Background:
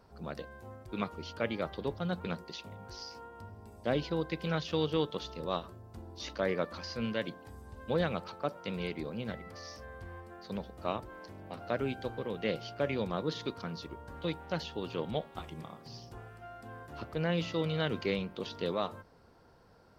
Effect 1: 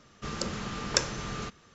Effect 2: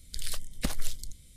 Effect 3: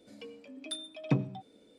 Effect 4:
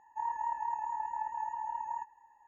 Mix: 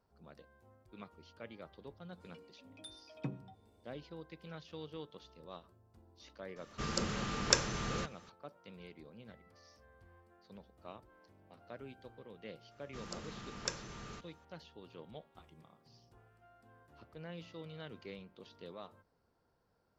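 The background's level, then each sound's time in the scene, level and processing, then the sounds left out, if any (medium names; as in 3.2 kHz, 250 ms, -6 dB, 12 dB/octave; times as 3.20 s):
background -16 dB
2.13 s: add 3 -13 dB
6.56 s: add 1 -2 dB
12.71 s: add 1 -12.5 dB
not used: 2, 4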